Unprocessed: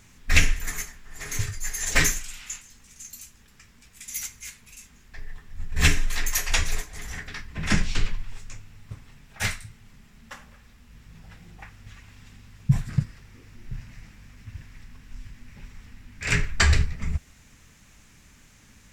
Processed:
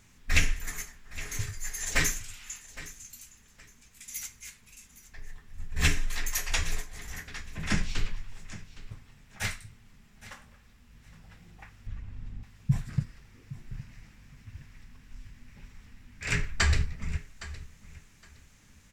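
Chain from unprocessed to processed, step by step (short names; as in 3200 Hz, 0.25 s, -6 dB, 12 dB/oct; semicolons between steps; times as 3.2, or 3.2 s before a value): 11.87–12.43 tilt -3.5 dB/oct; feedback echo 0.814 s, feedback 21%, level -17 dB; gain -5.5 dB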